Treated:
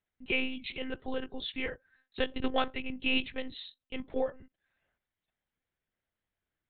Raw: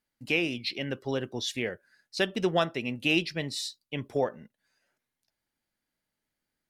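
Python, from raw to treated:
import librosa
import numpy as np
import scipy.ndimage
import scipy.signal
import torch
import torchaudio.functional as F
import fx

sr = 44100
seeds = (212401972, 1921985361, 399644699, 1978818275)

y = fx.lpc_monotone(x, sr, seeds[0], pitch_hz=260.0, order=10)
y = y * librosa.db_to_amplitude(-3.0)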